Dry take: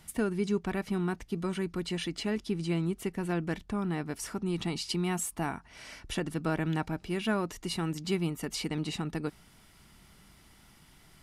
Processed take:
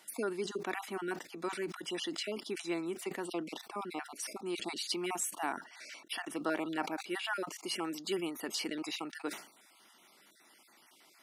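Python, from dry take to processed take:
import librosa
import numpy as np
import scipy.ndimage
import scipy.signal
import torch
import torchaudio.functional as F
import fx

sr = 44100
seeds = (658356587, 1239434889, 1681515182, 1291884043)

y = fx.spec_dropout(x, sr, seeds[0], share_pct=29)
y = scipy.signal.sosfilt(scipy.signal.butter(4, 310.0, 'highpass', fs=sr, output='sos'), y)
y = fx.peak_eq(y, sr, hz=440.0, db=-5.5, octaves=0.22)
y = fx.sustainer(y, sr, db_per_s=120.0)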